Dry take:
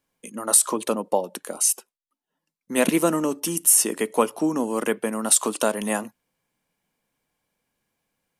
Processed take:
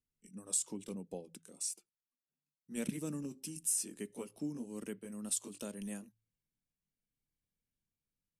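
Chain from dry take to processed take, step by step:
pitch glide at a constant tempo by −2 semitones ending unshifted
guitar amp tone stack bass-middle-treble 10-0-1
hum removal 55.21 Hz, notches 3
level +3.5 dB

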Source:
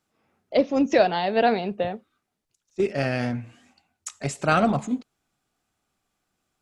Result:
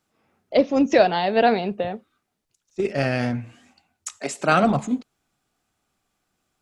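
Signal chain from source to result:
0:01.75–0:02.85: downward compressor, threshold −23 dBFS, peak gain reduction 5.5 dB
0:04.17–0:04.63: high-pass filter 280 Hz → 130 Hz 24 dB per octave
level +2.5 dB

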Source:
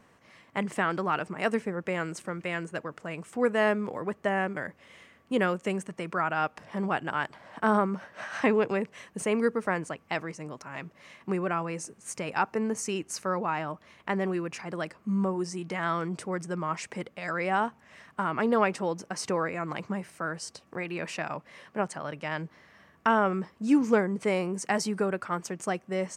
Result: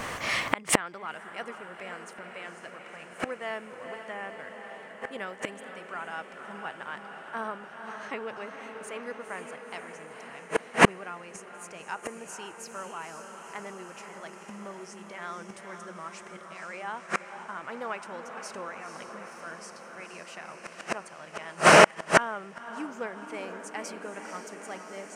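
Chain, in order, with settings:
parametric band 200 Hz −9.5 dB 2.3 octaves
speed change +4%
feedback delay with all-pass diffusion 497 ms, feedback 74%, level −6.5 dB
gate with flip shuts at −29 dBFS, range −36 dB
boost into a limiter +29 dB
level −1 dB

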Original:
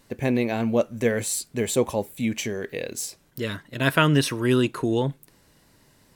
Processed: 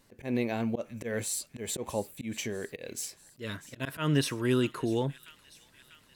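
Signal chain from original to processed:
delay with a high-pass on its return 644 ms, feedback 64%, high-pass 2,200 Hz, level −17 dB
volume swells 124 ms
level −6 dB

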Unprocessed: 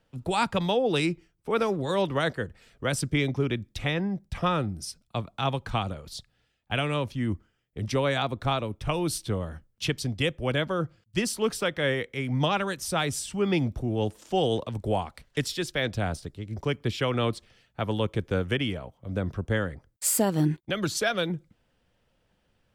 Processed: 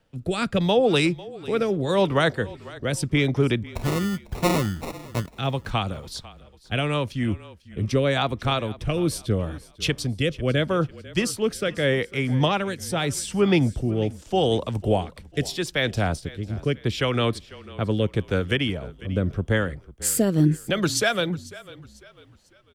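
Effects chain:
rotating-speaker cabinet horn 0.8 Hz
0:03.66–0:05.36: sample-rate reduction 1,600 Hz, jitter 0%
echo with shifted repeats 497 ms, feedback 38%, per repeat −30 Hz, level −19 dB
level +6 dB

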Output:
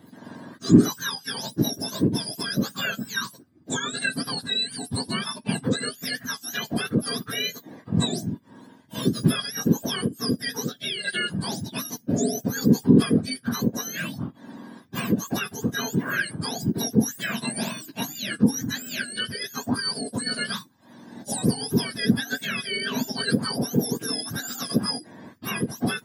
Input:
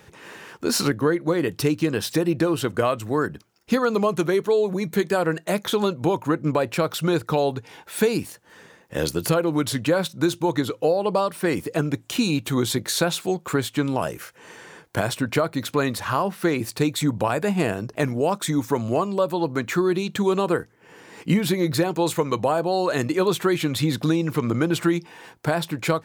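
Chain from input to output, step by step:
frequency axis turned over on the octave scale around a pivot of 1,300 Hz
hollow resonant body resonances 250/1,600 Hz, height 12 dB, ringing for 25 ms
level −4.5 dB

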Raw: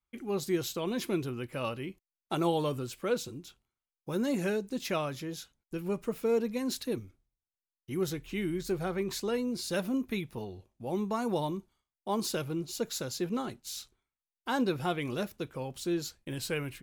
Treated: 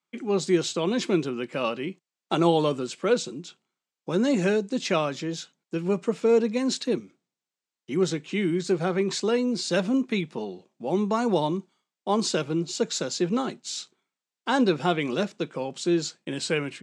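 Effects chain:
Chebyshev band-pass filter 160–8,000 Hz, order 4
level +8 dB

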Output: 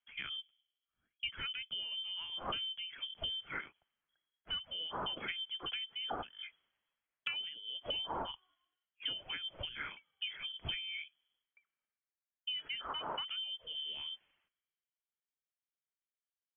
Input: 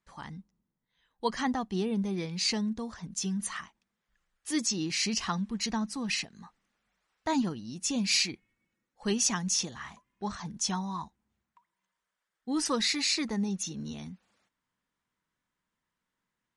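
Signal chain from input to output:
voice inversion scrambler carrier 3,300 Hz
downward compressor 20 to 1, threshold −43 dBFS, peak gain reduction 20.5 dB
multiband upward and downward expander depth 70%
level +5 dB

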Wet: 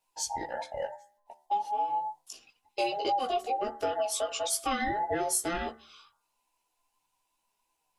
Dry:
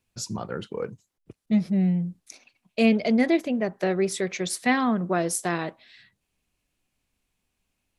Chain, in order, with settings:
frequency inversion band by band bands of 1,000 Hz
parametric band 2,100 Hz −2.5 dB
notch filter 1,300 Hz, Q 30
hum removal 74.65 Hz, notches 27
multi-voice chorus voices 6, 0.26 Hz, delay 17 ms, depth 4.8 ms
downward compressor 6 to 1, threshold −26 dBFS, peak gain reduction 8 dB
high-shelf EQ 4,500 Hz +5.5 dB

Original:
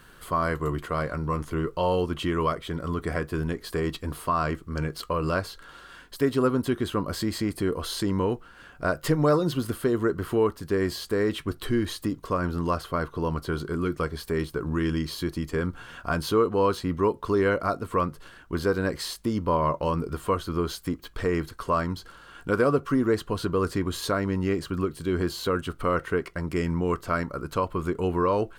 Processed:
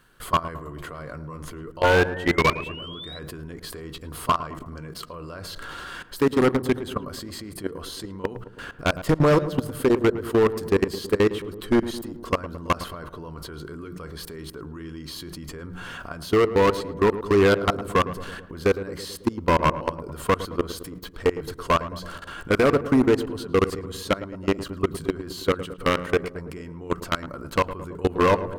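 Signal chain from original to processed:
mains-hum notches 60/120/180 Hz
in parallel at −1 dB: downward compressor 16 to 1, threshold −35 dBFS, peak gain reduction 19 dB
on the sum: sound drawn into the spectrogram rise, 0:01.84–0:03.19, 1,400–4,000 Hz −28 dBFS
output level in coarse steps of 22 dB
wave folding −18.5 dBFS
on a send: feedback echo with a low-pass in the loop 109 ms, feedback 67%, low-pass 1,100 Hz, level −12 dB
on the sum: level +7 dB

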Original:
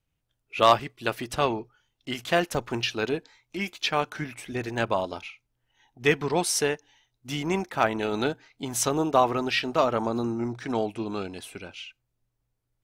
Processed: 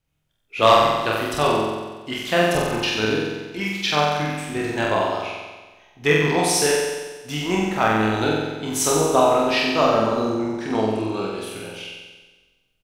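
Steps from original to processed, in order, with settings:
double-tracking delay 27 ms −5 dB
flutter between parallel walls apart 7.9 metres, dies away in 1.3 s
level +1.5 dB

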